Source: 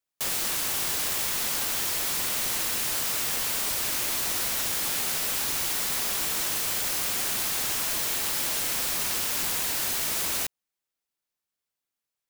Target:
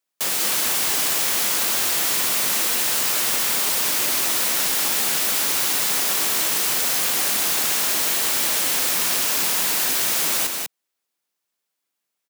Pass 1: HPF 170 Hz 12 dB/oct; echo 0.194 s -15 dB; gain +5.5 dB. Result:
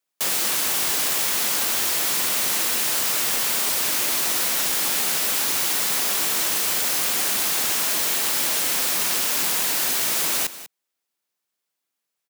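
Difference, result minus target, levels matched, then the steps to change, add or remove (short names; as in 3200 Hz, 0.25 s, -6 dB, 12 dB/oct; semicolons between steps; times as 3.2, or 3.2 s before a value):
echo-to-direct -11 dB
change: echo 0.194 s -4 dB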